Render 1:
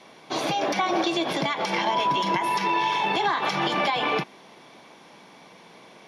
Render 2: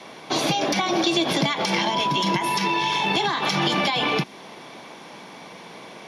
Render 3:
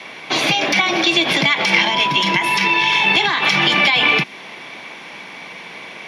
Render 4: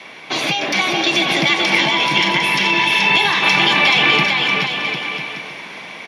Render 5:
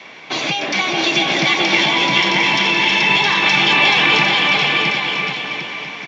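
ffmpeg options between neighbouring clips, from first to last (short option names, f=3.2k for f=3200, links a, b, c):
-filter_complex "[0:a]acrossover=split=280|3000[a][b][c];[b]acompressor=threshold=-34dB:ratio=3[d];[a][d][c]amix=inputs=3:normalize=0,volume=8dB"
-af "equalizer=f=2.3k:w=1.1:g=12.5,volume=1dB"
-filter_complex "[0:a]dynaudnorm=f=280:g=7:m=11.5dB,asplit=2[a][b];[b]aecho=0:1:430|752.5|994.4|1176|1312:0.631|0.398|0.251|0.158|0.1[c];[a][c]amix=inputs=2:normalize=0,volume=-2.5dB"
-af "aecho=1:1:666:0.708,volume=-1dB" -ar 16000 -c:a pcm_mulaw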